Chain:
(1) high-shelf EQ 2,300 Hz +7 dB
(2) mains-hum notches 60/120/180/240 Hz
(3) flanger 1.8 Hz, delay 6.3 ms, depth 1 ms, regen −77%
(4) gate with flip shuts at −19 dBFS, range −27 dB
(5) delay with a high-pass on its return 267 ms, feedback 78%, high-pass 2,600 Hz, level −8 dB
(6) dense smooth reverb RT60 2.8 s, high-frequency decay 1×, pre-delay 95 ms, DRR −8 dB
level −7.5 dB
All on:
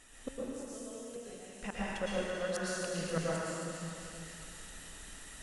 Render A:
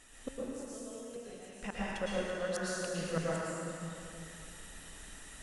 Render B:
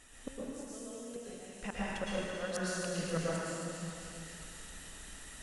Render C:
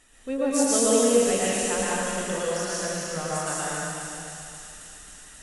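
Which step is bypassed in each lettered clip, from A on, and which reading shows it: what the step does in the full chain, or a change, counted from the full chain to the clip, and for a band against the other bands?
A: 5, change in momentary loudness spread +1 LU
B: 2, 500 Hz band −1.5 dB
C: 4, change in momentary loudness spread +8 LU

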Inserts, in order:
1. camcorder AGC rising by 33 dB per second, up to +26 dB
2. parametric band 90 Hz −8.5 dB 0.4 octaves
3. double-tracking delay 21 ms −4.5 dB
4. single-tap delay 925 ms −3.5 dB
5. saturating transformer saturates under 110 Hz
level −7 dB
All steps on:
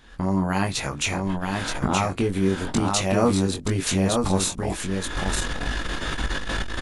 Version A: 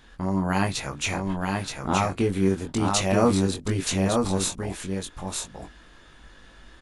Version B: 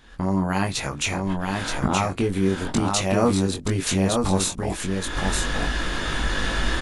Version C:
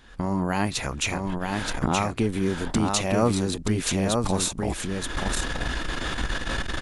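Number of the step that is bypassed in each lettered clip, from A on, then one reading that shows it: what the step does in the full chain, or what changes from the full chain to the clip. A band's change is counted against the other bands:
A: 1, change in crest factor +2.0 dB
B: 5, change in momentary loudness spread −2 LU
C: 3, change in integrated loudness −1.5 LU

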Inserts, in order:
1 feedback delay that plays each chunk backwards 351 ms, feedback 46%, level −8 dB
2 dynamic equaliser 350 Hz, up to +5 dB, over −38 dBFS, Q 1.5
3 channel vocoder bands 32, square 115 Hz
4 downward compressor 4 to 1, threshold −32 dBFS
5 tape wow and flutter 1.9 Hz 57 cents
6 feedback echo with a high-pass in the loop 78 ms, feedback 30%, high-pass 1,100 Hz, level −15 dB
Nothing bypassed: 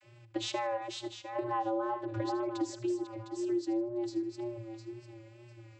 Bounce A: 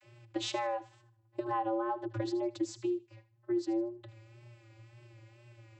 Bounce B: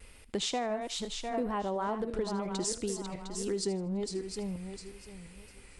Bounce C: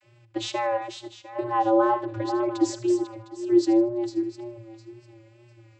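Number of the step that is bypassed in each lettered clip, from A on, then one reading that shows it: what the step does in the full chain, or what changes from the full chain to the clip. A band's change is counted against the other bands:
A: 1, change in momentary loudness spread −4 LU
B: 3, 8 kHz band +10.0 dB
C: 4, average gain reduction 5.5 dB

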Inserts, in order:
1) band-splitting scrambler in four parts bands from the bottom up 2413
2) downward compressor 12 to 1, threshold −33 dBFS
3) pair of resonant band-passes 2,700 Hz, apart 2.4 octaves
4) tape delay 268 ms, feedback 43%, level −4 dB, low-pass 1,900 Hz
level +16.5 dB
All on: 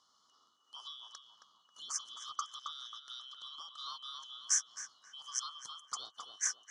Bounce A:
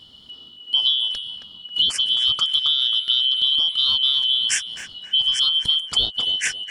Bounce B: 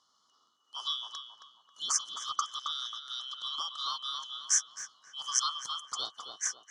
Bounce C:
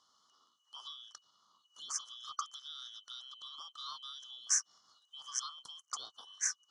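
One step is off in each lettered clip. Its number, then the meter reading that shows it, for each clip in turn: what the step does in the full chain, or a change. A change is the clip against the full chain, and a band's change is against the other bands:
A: 3, 4 kHz band +23.5 dB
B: 2, average gain reduction 6.5 dB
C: 4, change in momentary loudness spread +1 LU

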